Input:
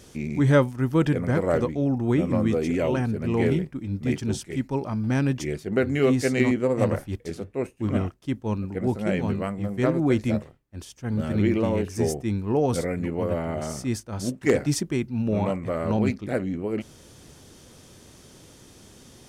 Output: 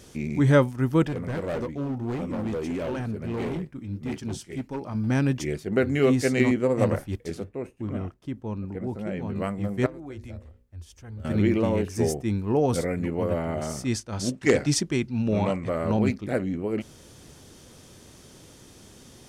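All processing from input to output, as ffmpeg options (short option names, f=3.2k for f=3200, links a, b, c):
-filter_complex "[0:a]asettb=1/sr,asplit=3[a][b][c];[a]atrim=end=1.034[d];[b]atrim=start=1.03:end=4.95,asetpts=PTS-STARTPTS,afade=t=in:d=0.004:c=qsin,afade=t=out:st=3.916:d=0.004:c=qsin,asoftclip=type=hard:threshold=-21.5dB,flanger=delay=3.3:depth=7.2:regen=-70:speed=1.6:shape=sinusoidal[e];[c]atrim=start=4.946[f];[d][e]acrossfade=d=0.004:c1=hsin:c2=qsin[g];[g][f]acrossfade=d=0.004:c1=qsin:c2=hsin,asettb=1/sr,asplit=3[h][i][j];[h]atrim=end=7.494[k];[i]atrim=start=7.49:end=9.36,asetpts=PTS-STARTPTS,afade=t=in:d=0.004:c=qsin,afade=t=out:st=1.866:d=0.004:c=qsin,acompressor=threshold=-31dB:ratio=2:attack=3.2:release=140:knee=1:detection=peak,highshelf=f=2.6k:g=-7.5[l];[j]atrim=start=9.356[m];[k][l]acrossfade=d=0.004:c1=hsin:c2=qsin[n];[n][m]acrossfade=d=0.004:c1=qsin:c2=hsin,asettb=1/sr,asplit=3[o][p][q];[o]atrim=end=9.864[r];[p]atrim=start=9.86:end=11.25,asetpts=PTS-STARTPTS,afade=t=in:d=0.004:c=qsin,afade=t=out:st=1.386:d=0.004:c=qsin,lowshelf=f=110:t=q:w=3:g=10.5,bandreject=f=60:t=h:w=6,bandreject=f=120:t=h:w=6,bandreject=f=180:t=h:w=6,bandreject=f=240:t=h:w=6,bandreject=f=300:t=h:w=6,bandreject=f=360:t=h:w=6,bandreject=f=420:t=h:w=6,bandreject=f=480:t=h:w=6,bandreject=f=540:t=h:w=6,acompressor=threshold=-49dB:ratio=2:attack=3.2:release=140:knee=1:detection=peak[s];[q]atrim=start=11.246[t];[r][s]acrossfade=d=0.004:c1=hsin:c2=qsin[u];[u][t]acrossfade=d=0.004:c1=qsin:c2=hsin,asettb=1/sr,asplit=3[v][w][x];[v]atrim=end=13.854[y];[w]atrim=start=13.85:end=15.7,asetpts=PTS-STARTPTS,afade=t=in:d=0.004:c=qsin,afade=t=out:st=1.846:d=0.004:c=qsin,lowpass=5k,aemphasis=mode=production:type=75kf[z];[x]atrim=start=15.696[aa];[y][z]acrossfade=d=0.004:c1=hsin:c2=qsin[ab];[ab][aa]acrossfade=d=0.004:c1=qsin:c2=hsin"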